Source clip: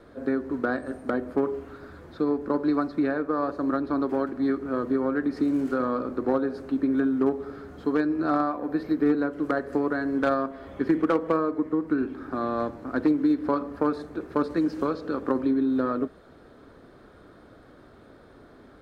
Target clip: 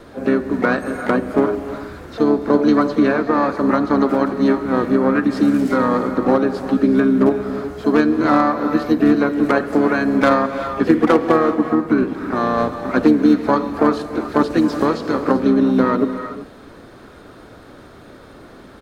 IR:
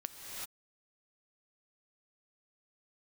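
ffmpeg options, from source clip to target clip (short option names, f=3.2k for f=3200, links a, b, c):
-filter_complex "[0:a]highshelf=f=2.8k:g=7,asplit=3[a][b][c];[b]asetrate=33038,aresample=44100,atempo=1.33484,volume=-8dB[d];[c]asetrate=66075,aresample=44100,atempo=0.66742,volume=-13dB[e];[a][d][e]amix=inputs=3:normalize=0,asplit=2[f][g];[1:a]atrim=start_sample=2205[h];[g][h]afir=irnorm=-1:irlink=0,volume=-3.5dB[i];[f][i]amix=inputs=2:normalize=0,volume=5dB"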